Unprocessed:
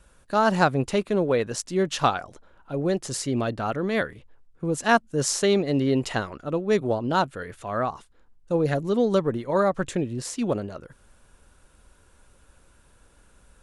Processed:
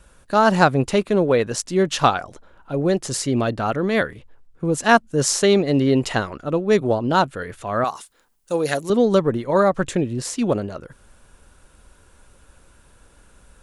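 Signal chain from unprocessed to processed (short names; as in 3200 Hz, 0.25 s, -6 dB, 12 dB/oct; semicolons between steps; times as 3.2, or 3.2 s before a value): 7.84–8.9 RIAA curve recording; gain +5 dB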